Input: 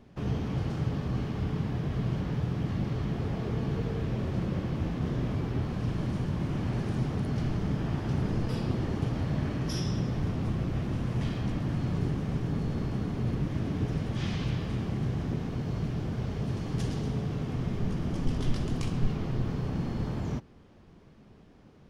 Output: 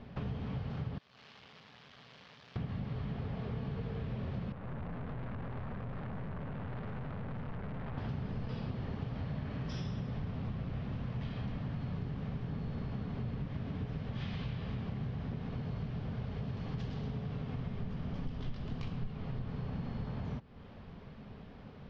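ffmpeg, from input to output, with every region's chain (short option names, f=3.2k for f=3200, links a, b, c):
-filter_complex "[0:a]asettb=1/sr,asplit=3[a][b][c];[a]atrim=end=0.984[d];[b]atrim=start=0.98:end=2.56,asetpts=PTS-STARTPTS,afade=t=in:d=0.004:c=qsin,afade=t=out:st=1.576:d=0.004:c=qsin,aeval=exprs='(tanh(28.2*val(0)+0.75)-tanh(0.75))/28.2':c=same,aderivative[e];[c]atrim=start=2.556[f];[d][e]acrossfade=d=0.004:c1=hsin:c2=qsin[g];[g][f]acrossfade=d=0.004:c1=qsin:c2=hsin,asettb=1/sr,asplit=3[h][i][j];[h]atrim=end=4.524[k];[i]atrim=start=4.52:end=7.98,asetpts=PTS-STARTPTS,afade=t=in:d=0.004:c=qsin,afade=t=out:st=3.456:d=0.004:c=qsin,highshelf=f=2.3k:t=q:w=1.5:g=-12,aeval=exprs='(tanh(89.1*val(0)+0.6)-tanh(0.6))/89.1':c=same[l];[j]atrim=start=7.976[m];[k][l]acrossfade=d=0.004:c1=hsin:c2=qsin[n];[n][m]acrossfade=d=0.004:c1=qsin:c2=hsin,lowpass=f=4.4k:w=0.5412,lowpass=f=4.4k:w=1.3066,equalizer=f=330:w=5.5:g=-13.5,acompressor=threshold=-44dB:ratio=4,volume=6dB"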